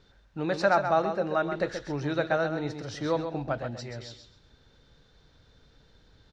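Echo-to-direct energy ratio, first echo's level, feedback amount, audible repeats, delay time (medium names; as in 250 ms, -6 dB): -8.0 dB, -8.0 dB, 23%, 3, 131 ms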